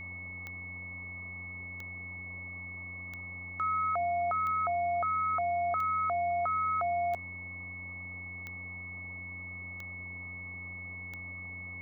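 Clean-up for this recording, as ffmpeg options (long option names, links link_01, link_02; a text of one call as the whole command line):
ffmpeg -i in.wav -af "adeclick=threshold=4,bandreject=frequency=90:width_type=h:width=4,bandreject=frequency=180:width_type=h:width=4,bandreject=frequency=270:width_type=h:width=4,bandreject=frequency=2200:width=30,afwtdn=0.0045" out.wav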